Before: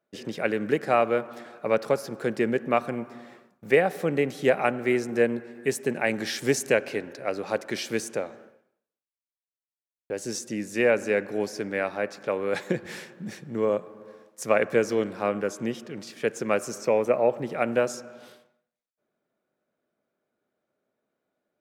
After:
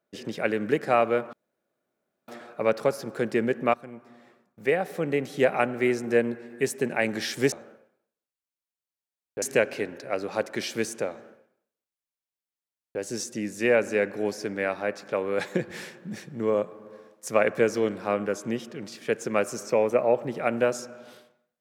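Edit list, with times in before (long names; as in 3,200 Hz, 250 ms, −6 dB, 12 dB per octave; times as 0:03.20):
0:01.33: splice in room tone 0.95 s
0:02.79–0:04.61: fade in, from −13.5 dB
0:08.25–0:10.15: duplicate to 0:06.57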